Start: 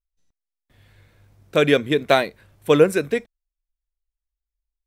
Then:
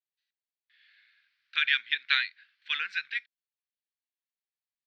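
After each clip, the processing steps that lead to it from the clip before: elliptic band-pass 1.6–4.5 kHz, stop band 50 dB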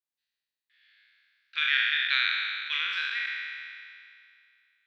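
spectral sustain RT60 2.35 s; trim -4 dB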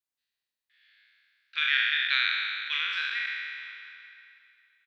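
echo from a far wall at 150 m, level -18 dB

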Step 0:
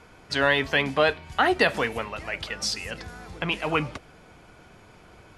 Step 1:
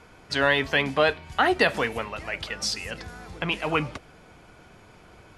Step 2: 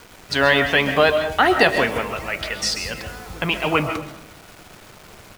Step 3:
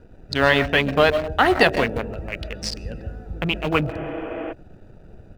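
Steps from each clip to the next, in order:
no audible change
bit crusher 8-bit; delay 262 ms -23 dB; on a send at -7 dB: reverberation RT60 0.50 s, pre-delay 95 ms; on the sum: trim +5 dB
local Wiener filter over 41 samples; bass shelf 77 Hz +10 dB; spectral replace 3.95–4.50 s, 210–3500 Hz before

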